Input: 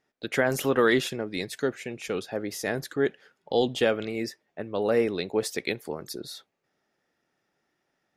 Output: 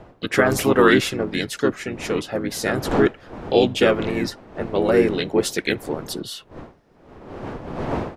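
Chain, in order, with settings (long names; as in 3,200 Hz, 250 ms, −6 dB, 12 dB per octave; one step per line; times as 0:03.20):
wind on the microphone 620 Hz −41 dBFS
pitch-shifted copies added −4 semitones −3 dB
level +5.5 dB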